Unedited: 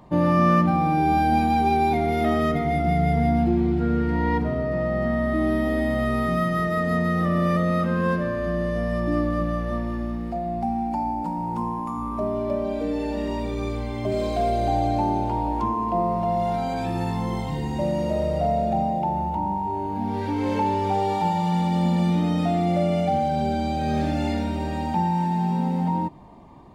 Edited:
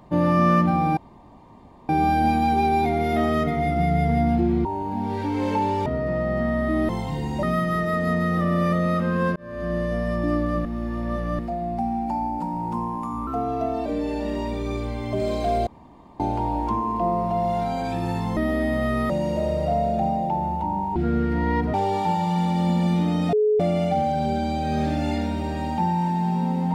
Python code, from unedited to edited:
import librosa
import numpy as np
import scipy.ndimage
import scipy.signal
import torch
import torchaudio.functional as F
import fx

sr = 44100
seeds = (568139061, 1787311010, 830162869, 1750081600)

y = fx.edit(x, sr, fx.insert_room_tone(at_s=0.97, length_s=0.92),
    fx.swap(start_s=3.73, length_s=0.78, other_s=19.69, other_length_s=1.21),
    fx.swap(start_s=5.54, length_s=0.73, other_s=17.29, other_length_s=0.54),
    fx.fade_in_span(start_s=8.2, length_s=0.38),
    fx.reverse_span(start_s=9.49, length_s=0.74),
    fx.speed_span(start_s=12.11, length_s=0.67, speed=1.14),
    fx.room_tone_fill(start_s=14.59, length_s=0.53),
    fx.bleep(start_s=22.49, length_s=0.27, hz=425.0, db=-16.0), tone=tone)